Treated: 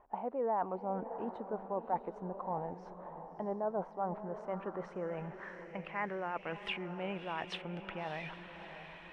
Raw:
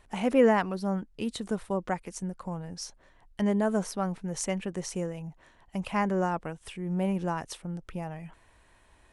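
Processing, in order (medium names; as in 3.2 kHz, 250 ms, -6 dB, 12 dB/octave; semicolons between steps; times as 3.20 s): tone controls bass -13 dB, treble -4 dB; reverse; compression 4:1, threshold -47 dBFS, peak gain reduction 23 dB; reverse; vibrato 6.5 Hz 38 cents; echo that smears into a reverb 643 ms, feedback 42%, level -10 dB; low-pass sweep 870 Hz -> 2.8 kHz, 4.02–6.70 s; trim +7 dB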